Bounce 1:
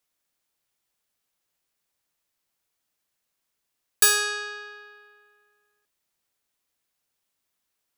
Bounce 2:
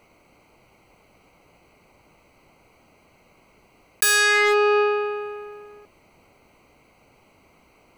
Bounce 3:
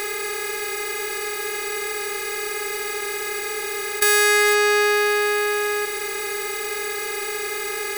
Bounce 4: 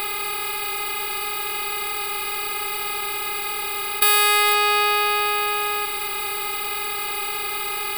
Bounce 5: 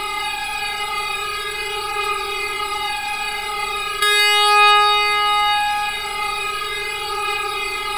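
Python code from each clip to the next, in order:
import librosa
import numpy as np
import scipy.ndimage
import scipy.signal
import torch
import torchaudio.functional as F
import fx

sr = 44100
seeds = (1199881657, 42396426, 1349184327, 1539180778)

y1 = fx.wiener(x, sr, points=25)
y1 = fx.peak_eq(y1, sr, hz=2100.0, db=12.0, octaves=0.4)
y1 = fx.env_flatten(y1, sr, amount_pct=100)
y1 = F.gain(torch.from_numpy(y1), -4.5).numpy()
y2 = fx.bin_compress(y1, sr, power=0.2)
y2 = F.gain(torch.from_numpy(y2), -1.5).numpy()
y3 = fx.fixed_phaser(y2, sr, hz=1800.0, stages=6)
y3 = F.gain(torch.from_numpy(y3), 5.5).numpy()
y4 = fx.air_absorb(y3, sr, metres=62.0)
y4 = y4 + 10.0 ** (-5.0 / 20.0) * np.pad(y4, (int(172 * sr / 1000.0), 0))[:len(y4)]
y4 = fx.comb_cascade(y4, sr, direction='falling', hz=0.38)
y4 = F.gain(torch.from_numpy(y4), 9.0).numpy()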